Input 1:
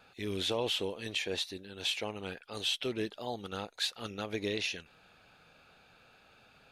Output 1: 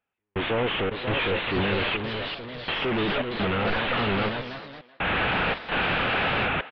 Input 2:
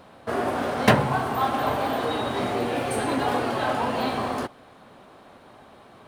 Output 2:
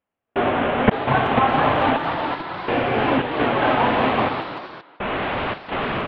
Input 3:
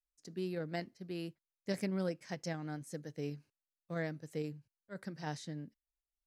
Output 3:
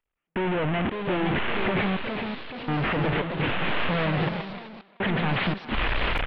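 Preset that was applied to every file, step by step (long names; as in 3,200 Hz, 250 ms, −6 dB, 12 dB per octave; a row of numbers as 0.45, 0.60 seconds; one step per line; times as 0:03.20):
linear delta modulator 16 kbit/s, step −24.5 dBFS
gate pattern "..xxx.xxxxx.." 84 BPM −60 dB
delay with pitch and tempo change per echo 593 ms, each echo +2 semitones, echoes 3, each echo −6 dB
far-end echo of a speakerphone 380 ms, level −16 dB
level +5.5 dB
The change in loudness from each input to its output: +9.5, +4.0, +15.0 LU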